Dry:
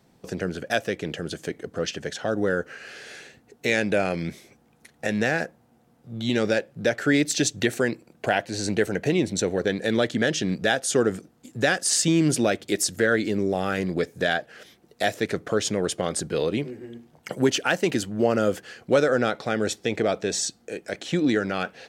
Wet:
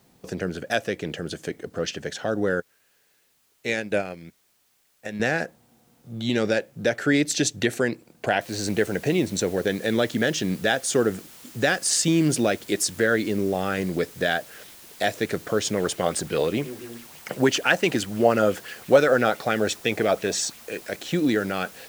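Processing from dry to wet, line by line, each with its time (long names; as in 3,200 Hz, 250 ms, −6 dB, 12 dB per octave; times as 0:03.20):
0:02.60–0:05.20: expander for the loud parts 2.5 to 1, over −38 dBFS
0:08.41: noise floor change −66 dB −47 dB
0:15.73–0:20.89: auto-filter bell 5.9 Hz 620–2,900 Hz +8 dB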